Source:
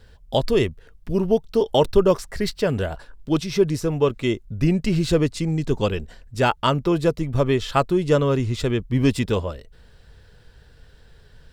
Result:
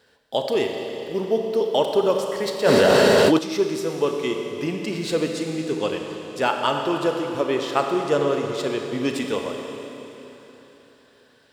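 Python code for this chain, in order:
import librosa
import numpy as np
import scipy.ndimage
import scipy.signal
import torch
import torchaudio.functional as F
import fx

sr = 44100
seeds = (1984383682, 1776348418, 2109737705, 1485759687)

y = scipy.signal.sosfilt(scipy.signal.butter(2, 300.0, 'highpass', fs=sr, output='sos'), x)
y = fx.rev_schroeder(y, sr, rt60_s=3.6, comb_ms=28, drr_db=2.5)
y = fx.env_flatten(y, sr, amount_pct=100, at=(2.64, 3.37), fade=0.02)
y = y * librosa.db_to_amplitude(-2.0)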